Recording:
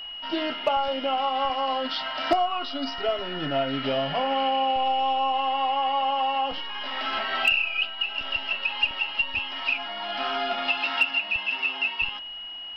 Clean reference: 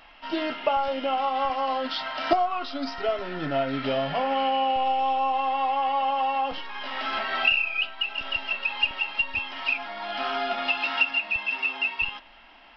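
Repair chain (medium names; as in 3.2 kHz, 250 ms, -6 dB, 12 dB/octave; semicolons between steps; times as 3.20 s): clip repair -12.5 dBFS; band-stop 2.9 kHz, Q 30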